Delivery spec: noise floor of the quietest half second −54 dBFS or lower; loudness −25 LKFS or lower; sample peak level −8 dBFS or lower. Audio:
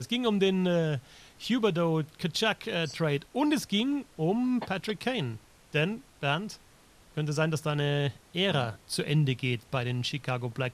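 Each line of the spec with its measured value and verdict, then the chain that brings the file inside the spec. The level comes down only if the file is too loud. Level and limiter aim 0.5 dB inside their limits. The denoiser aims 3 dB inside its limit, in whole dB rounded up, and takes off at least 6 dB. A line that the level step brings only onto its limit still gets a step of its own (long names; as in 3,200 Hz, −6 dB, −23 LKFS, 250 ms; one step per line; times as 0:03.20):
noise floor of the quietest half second −58 dBFS: in spec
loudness −29.5 LKFS: in spec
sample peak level −13.0 dBFS: in spec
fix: no processing needed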